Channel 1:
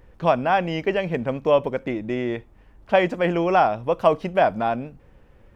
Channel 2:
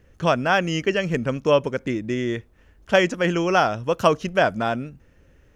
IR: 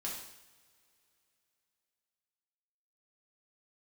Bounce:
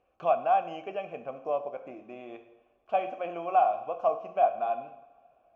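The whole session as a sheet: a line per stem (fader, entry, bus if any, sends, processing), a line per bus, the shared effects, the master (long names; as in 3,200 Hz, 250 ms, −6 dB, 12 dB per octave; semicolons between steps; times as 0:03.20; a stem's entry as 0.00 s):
−6.0 dB, 0.00 s, send −6 dB, low-shelf EQ 80 Hz +11.5 dB
+0.5 dB, 0.00 s, send −10 dB, leveller curve on the samples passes 1; downward compressor, threshold −23 dBFS, peak gain reduction 13 dB; automatic ducking −13 dB, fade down 1.70 s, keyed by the first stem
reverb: on, pre-delay 3 ms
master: formant filter a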